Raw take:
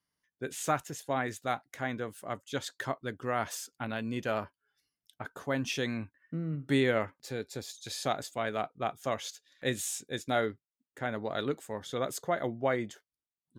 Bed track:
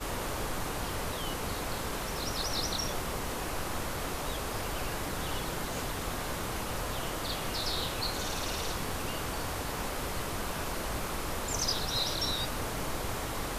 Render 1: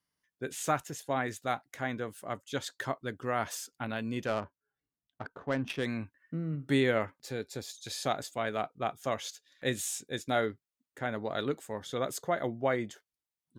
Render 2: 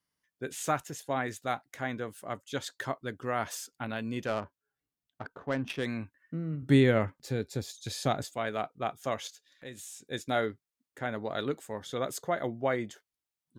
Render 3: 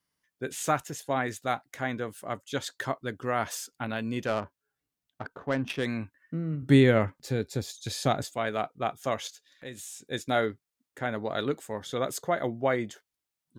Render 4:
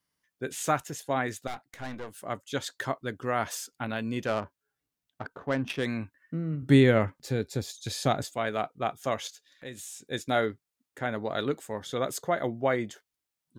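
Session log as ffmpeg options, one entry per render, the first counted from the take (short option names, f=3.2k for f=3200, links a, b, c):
-filter_complex "[0:a]asettb=1/sr,asplit=3[a][b][c];[a]atrim=end=4.264[d];[b]atrim=start=4.26:end=5.86,asetpts=PTS-STARTPTS,afade=t=in:d=0.004:c=qsin,afade=t=out:st=1.596:d=0.004:c=qsin,adynamicsmooth=sensitivity=4:basefreq=1.1k[e];[c]atrim=start=5.856[f];[d][e]acrossfade=d=0.004:c1=hsin:c2=qsin[g];[g][f]acrossfade=d=0.004:c1=qsin:c2=hsin"
-filter_complex "[0:a]asettb=1/sr,asplit=3[a][b][c];[a]atrim=end=6.624[d];[b]atrim=start=6.62:end=8.25,asetpts=PTS-STARTPTS,afade=t=in:d=0.004:c=qsin,afade=t=out:st=1.626:d=0.004:c=qsin,lowshelf=f=240:g=12[e];[c]atrim=start=8.246[f];[d][e]acrossfade=d=0.004:c1=hsin:c2=qsin[g];[g][f]acrossfade=d=0.004:c1=qsin:c2=hsin,asettb=1/sr,asplit=3[h][i][j];[h]atrim=end=9.274[k];[i]atrim=start=9.27:end=10.07,asetpts=PTS-STARTPTS,afade=t=in:d=0.004:c=qsin,afade=t=out:st=0.796:d=0.004:c=qsin,acompressor=threshold=-50dB:ratio=2:attack=3.2:release=140:knee=1:detection=peak[l];[j]atrim=start=10.066[m];[k][l]acrossfade=d=0.004:c1=hsin:c2=qsin[n];[n][m]acrossfade=d=0.004:c1=qsin:c2=hsin"
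-af "volume=3dB"
-filter_complex "[0:a]asettb=1/sr,asplit=3[a][b][c];[a]atrim=end=1.474[d];[b]atrim=start=1.47:end=2.14,asetpts=PTS-STARTPTS,afade=t=in:d=0.004:c=qsin,afade=t=out:st=0.666:d=0.004:c=qsin,aeval=exprs='(tanh(44.7*val(0)+0.7)-tanh(0.7))/44.7':c=same[e];[c]atrim=start=2.136[f];[d][e]acrossfade=d=0.004:c1=hsin:c2=qsin[g];[g][f]acrossfade=d=0.004:c1=qsin:c2=hsin"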